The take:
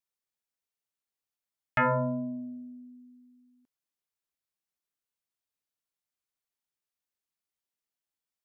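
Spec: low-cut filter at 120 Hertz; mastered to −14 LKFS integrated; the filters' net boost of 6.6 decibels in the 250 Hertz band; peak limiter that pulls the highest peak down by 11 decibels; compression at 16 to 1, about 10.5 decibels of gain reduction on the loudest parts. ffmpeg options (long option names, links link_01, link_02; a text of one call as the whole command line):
ffmpeg -i in.wav -af "highpass=120,equalizer=frequency=250:width_type=o:gain=7,acompressor=threshold=-30dB:ratio=16,volume=25dB,alimiter=limit=-5dB:level=0:latency=1" out.wav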